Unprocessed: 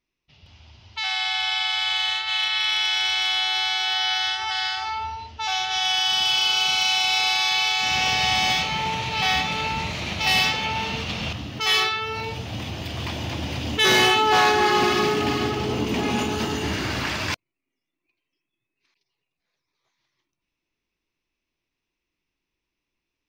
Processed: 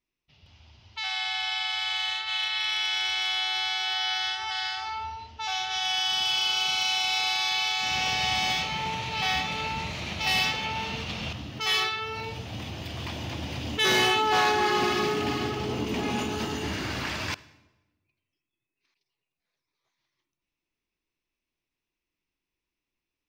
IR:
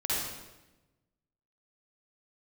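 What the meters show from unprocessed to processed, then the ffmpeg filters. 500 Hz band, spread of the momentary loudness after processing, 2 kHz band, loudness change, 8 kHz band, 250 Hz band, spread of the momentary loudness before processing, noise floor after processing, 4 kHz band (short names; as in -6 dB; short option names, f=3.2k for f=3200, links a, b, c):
-5.0 dB, 11 LU, -5.0 dB, -5.0 dB, -5.0 dB, -5.0 dB, 11 LU, under -85 dBFS, -5.0 dB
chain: -filter_complex "[0:a]asplit=2[a][b];[1:a]atrim=start_sample=2205[c];[b][c]afir=irnorm=-1:irlink=0,volume=-26.5dB[d];[a][d]amix=inputs=2:normalize=0,volume=-5.5dB"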